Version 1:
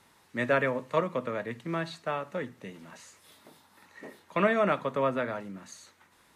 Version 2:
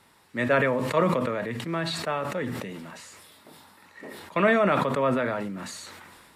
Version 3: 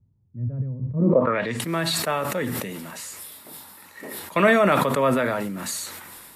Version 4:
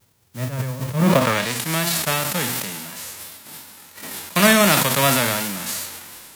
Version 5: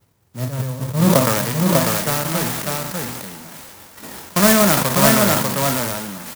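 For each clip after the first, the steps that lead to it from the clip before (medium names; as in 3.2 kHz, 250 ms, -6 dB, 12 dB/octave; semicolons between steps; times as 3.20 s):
band-stop 6.3 kHz, Q 8.5; decay stretcher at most 27 dB/s; trim +2.5 dB
treble shelf 7.4 kHz +11.5 dB; low-pass sweep 110 Hz -> 13 kHz, 0.91–1.64 s; trim +3.5 dB
formants flattened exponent 0.3; vibrato 2.8 Hz 62 cents; endings held to a fixed fall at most 120 dB/s; trim +3 dB
distance through air 70 m; delay 595 ms -3 dB; sampling jitter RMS 0.1 ms; trim +2 dB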